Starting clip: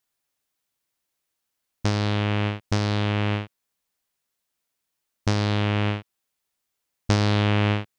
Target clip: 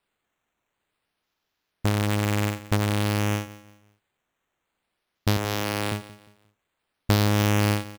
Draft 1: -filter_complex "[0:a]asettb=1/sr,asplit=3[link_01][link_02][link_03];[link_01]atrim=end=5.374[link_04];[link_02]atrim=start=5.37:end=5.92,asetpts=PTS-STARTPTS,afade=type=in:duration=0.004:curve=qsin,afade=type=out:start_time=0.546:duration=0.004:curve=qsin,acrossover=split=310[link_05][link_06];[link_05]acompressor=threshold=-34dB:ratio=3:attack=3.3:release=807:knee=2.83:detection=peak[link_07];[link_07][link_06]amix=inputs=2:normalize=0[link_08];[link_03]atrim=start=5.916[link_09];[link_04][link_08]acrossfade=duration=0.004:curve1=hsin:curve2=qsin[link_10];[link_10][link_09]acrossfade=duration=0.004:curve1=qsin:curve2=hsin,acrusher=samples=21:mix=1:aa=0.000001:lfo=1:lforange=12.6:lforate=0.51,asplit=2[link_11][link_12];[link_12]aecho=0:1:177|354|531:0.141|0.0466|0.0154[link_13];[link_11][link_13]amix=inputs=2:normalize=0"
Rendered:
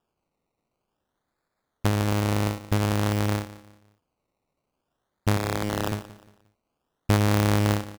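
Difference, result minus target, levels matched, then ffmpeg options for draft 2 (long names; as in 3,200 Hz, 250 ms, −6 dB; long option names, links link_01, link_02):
sample-and-hold swept by an LFO: distortion +6 dB
-filter_complex "[0:a]asettb=1/sr,asplit=3[link_01][link_02][link_03];[link_01]atrim=end=5.374[link_04];[link_02]atrim=start=5.37:end=5.92,asetpts=PTS-STARTPTS,afade=type=in:duration=0.004:curve=qsin,afade=type=out:start_time=0.546:duration=0.004:curve=qsin,acrossover=split=310[link_05][link_06];[link_05]acompressor=threshold=-34dB:ratio=3:attack=3.3:release=807:knee=2.83:detection=peak[link_07];[link_07][link_06]amix=inputs=2:normalize=0[link_08];[link_03]atrim=start=5.916[link_09];[link_04][link_08]acrossfade=duration=0.004:curve1=hsin:curve2=qsin[link_10];[link_10][link_09]acrossfade=duration=0.004:curve1=qsin:curve2=hsin,acrusher=samples=7:mix=1:aa=0.000001:lfo=1:lforange=4.2:lforate=0.51,asplit=2[link_11][link_12];[link_12]aecho=0:1:177|354|531:0.141|0.0466|0.0154[link_13];[link_11][link_13]amix=inputs=2:normalize=0"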